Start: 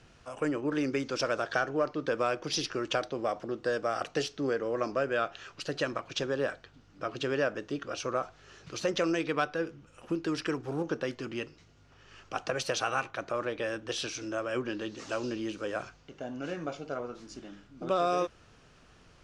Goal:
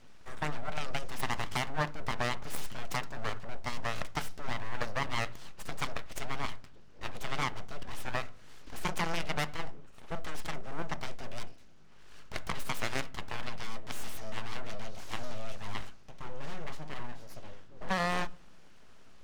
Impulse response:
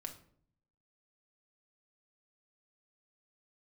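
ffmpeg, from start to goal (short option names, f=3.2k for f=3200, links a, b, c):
-filter_complex "[0:a]aeval=exprs='abs(val(0))':c=same,aeval=exprs='0.188*(cos(1*acos(clip(val(0)/0.188,-1,1)))-cos(1*PI/2))+0.075*(cos(7*acos(clip(val(0)/0.188,-1,1)))-cos(7*PI/2))':c=same,asplit=2[a][b];[b]aemphasis=mode=reproduction:type=riaa[c];[1:a]atrim=start_sample=2205,lowshelf=f=200:g=-11[d];[c][d]afir=irnorm=-1:irlink=0,volume=-7.5dB[e];[a][e]amix=inputs=2:normalize=0,volume=-6.5dB"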